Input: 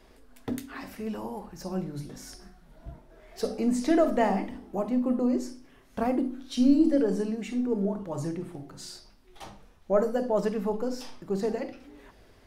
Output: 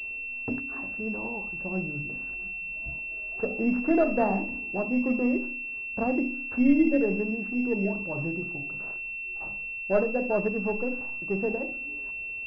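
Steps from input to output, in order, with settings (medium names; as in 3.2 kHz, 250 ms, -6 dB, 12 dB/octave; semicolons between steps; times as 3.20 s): local Wiener filter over 9 samples; class-D stage that switches slowly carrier 2.7 kHz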